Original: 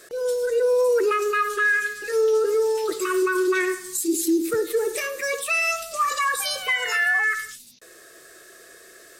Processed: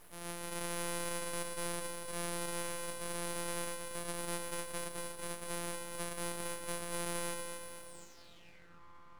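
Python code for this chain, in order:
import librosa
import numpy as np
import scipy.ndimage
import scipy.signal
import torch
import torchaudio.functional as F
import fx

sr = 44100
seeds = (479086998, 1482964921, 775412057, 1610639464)

p1 = np.r_[np.sort(x[:len(x) // 256 * 256].reshape(-1, 256), axis=1).ravel(), x[len(x) // 256 * 256:]]
p2 = fx.echo_feedback(p1, sr, ms=236, feedback_pct=55, wet_db=-6.0)
p3 = fx.quant_dither(p2, sr, seeds[0], bits=6, dither='triangular')
p4 = p2 + (p3 * 10.0 ** (-10.5 / 20.0))
p5 = fx.filter_sweep_bandpass(p4, sr, from_hz=5300.0, to_hz=600.0, start_s=7.85, end_s=8.82, q=5.4)
p6 = np.abs(p5)
y = p6 * 10.0 ** (1.5 / 20.0)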